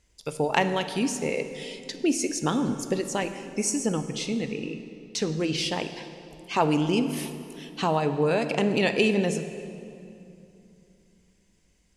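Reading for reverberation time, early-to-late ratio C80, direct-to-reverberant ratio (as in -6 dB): 2.7 s, 11.0 dB, 8.5 dB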